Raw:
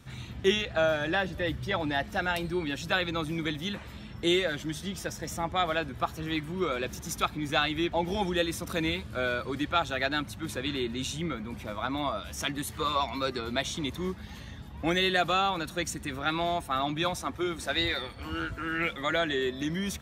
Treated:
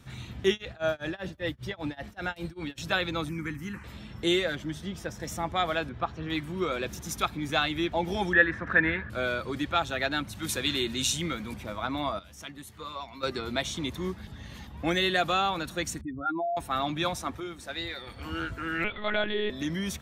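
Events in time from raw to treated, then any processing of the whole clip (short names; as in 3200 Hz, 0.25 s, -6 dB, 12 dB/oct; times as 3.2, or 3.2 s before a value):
0.49–2.78 tremolo 5.1 Hz, depth 97%
3.29–3.84 fixed phaser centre 1500 Hz, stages 4
4.55–5.2 high shelf 3200 Hz -8.5 dB
5.89–6.3 air absorption 180 m
8.33–9.1 synth low-pass 1700 Hz, resonance Q 12
10.35–11.54 high shelf 2800 Hz +11.5 dB
12.19–13.23 gain -10.5 dB
14.27–14.67 reverse
16.01–16.57 spectral contrast raised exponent 3.7
17.4–18.07 gain -7 dB
18.84–19.5 monotone LPC vocoder at 8 kHz 210 Hz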